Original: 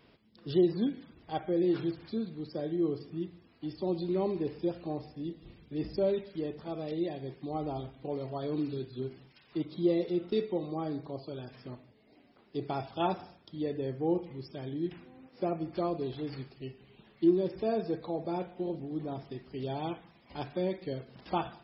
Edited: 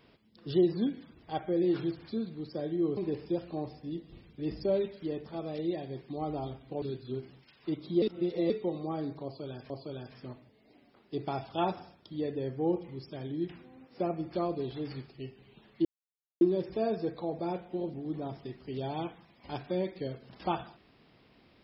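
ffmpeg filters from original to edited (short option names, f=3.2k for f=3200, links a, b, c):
-filter_complex "[0:a]asplit=7[a][b][c][d][e][f][g];[a]atrim=end=2.972[h];[b]atrim=start=4.298:end=8.152[i];[c]atrim=start=8.698:end=9.902[j];[d]atrim=start=9.898:end=10.382,asetpts=PTS-STARTPTS,areverse[k];[e]atrim=start=10.378:end=11.582[l];[f]atrim=start=11.118:end=17.27,asetpts=PTS-STARTPTS,afade=t=out:st=6.148:d=0.004:c=hsin,apad=pad_dur=0.56[m];[g]atrim=start=17.27,asetpts=PTS-STARTPTS,afade=t=in:d=0.004:c=hsin[n];[h][i]acrossfade=d=0.004:c1=hsin:c2=hsin[o];[o][j]acrossfade=d=0.004:c1=hsin:c2=hsin[p];[p][k]acrossfade=d=0.004:c1=hsin:c2=hsin[q];[q][l]acrossfade=d=0.004:c1=hsin:c2=hsin[r];[m][n]concat=n=2:v=0:a=1[s];[r][s]acrossfade=d=0.004:c1=hsin:c2=hsin"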